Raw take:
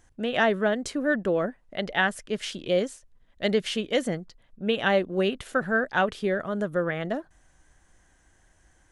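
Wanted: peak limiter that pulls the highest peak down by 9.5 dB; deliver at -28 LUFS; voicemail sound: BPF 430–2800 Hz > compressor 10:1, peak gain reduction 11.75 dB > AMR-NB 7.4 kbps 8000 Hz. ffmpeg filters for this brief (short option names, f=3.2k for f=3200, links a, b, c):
-af "alimiter=limit=-19dB:level=0:latency=1,highpass=430,lowpass=2.8k,acompressor=threshold=-35dB:ratio=10,volume=13.5dB" -ar 8000 -c:a libopencore_amrnb -b:a 7400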